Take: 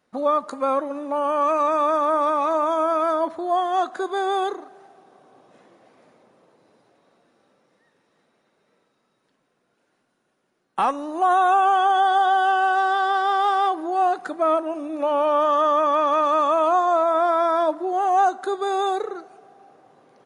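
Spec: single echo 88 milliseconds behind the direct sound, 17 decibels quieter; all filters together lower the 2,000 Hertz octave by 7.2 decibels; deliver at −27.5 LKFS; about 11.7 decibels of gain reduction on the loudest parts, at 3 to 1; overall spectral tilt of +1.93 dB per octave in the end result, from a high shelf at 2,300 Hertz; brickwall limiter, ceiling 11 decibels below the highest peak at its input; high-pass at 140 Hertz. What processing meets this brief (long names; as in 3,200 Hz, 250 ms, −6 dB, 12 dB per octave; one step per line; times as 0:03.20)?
high-pass filter 140 Hz
parametric band 2,000 Hz −9 dB
high-shelf EQ 2,300 Hz −5 dB
downward compressor 3 to 1, threshold −34 dBFS
brickwall limiter −30 dBFS
single-tap delay 88 ms −17 dB
level +9 dB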